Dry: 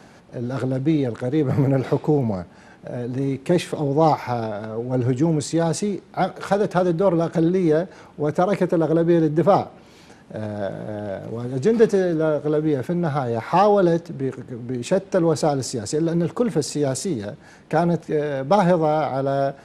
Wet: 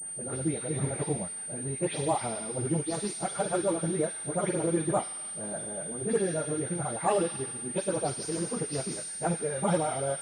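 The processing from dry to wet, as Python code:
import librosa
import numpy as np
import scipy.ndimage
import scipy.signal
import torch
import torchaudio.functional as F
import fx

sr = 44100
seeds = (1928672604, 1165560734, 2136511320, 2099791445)

p1 = fx.spec_delay(x, sr, highs='late', ms=234)
p2 = fx.high_shelf(p1, sr, hz=2700.0, db=10.5)
p3 = p2 + fx.echo_wet_highpass(p2, sr, ms=98, feedback_pct=83, hz=2300.0, wet_db=-4.0, dry=0)
p4 = fx.stretch_vocoder_free(p3, sr, factor=0.52)
p5 = fx.pwm(p4, sr, carrier_hz=8800.0)
y = p5 * librosa.db_to_amplitude(-7.0)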